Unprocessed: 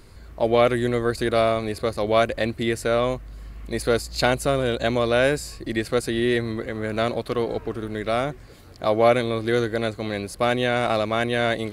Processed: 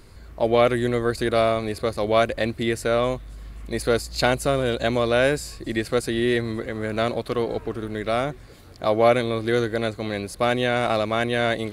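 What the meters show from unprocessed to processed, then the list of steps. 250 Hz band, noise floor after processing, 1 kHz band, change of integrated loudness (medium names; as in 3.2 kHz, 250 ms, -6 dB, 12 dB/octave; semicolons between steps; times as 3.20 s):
0.0 dB, -44 dBFS, 0.0 dB, 0.0 dB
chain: feedback echo behind a high-pass 266 ms, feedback 72%, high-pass 5.2 kHz, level -22 dB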